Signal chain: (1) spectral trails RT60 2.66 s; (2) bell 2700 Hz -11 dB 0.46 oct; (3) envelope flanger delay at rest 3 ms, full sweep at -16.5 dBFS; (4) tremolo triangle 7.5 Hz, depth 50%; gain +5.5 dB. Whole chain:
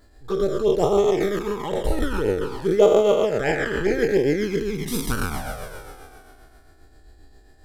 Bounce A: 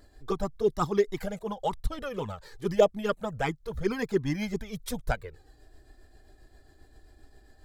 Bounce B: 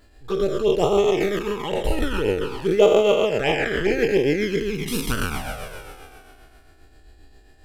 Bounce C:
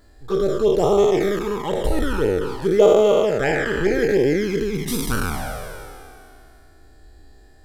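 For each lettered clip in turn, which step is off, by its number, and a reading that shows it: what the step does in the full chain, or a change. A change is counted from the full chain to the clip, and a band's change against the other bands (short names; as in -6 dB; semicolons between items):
1, 1 kHz band +3.5 dB; 2, 4 kHz band +5.0 dB; 4, loudness change +2.5 LU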